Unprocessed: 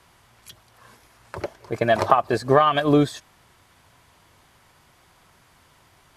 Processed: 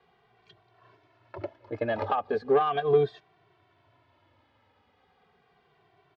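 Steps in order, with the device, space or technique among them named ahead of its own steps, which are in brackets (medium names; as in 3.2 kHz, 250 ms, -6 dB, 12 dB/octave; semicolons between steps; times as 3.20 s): barber-pole flanger into a guitar amplifier (endless flanger 2.1 ms -0.37 Hz; saturation -14 dBFS, distortion -16 dB; cabinet simulation 84–3800 Hz, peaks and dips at 100 Hz +6 dB, 300 Hz +4 dB, 420 Hz +10 dB, 730 Hz +7 dB); trim -7.5 dB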